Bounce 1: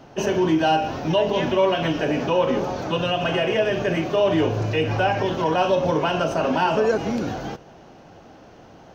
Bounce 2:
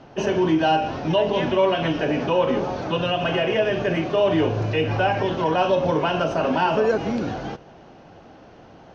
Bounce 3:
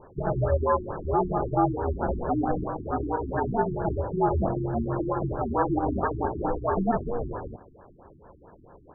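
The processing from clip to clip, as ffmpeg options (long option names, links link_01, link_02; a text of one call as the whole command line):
ffmpeg -i in.wav -af "lowpass=5000" out.wav
ffmpeg -i in.wav -af "aeval=exprs='val(0)*sin(2*PI*240*n/s)':channel_layout=same,lowpass=frequency=2700:width_type=q:width=4.9,afftfilt=real='re*lt(b*sr/1024,360*pow(1800/360,0.5+0.5*sin(2*PI*4.5*pts/sr)))':imag='im*lt(b*sr/1024,360*pow(1800/360,0.5+0.5*sin(2*PI*4.5*pts/sr)))':win_size=1024:overlap=0.75,volume=-1dB" out.wav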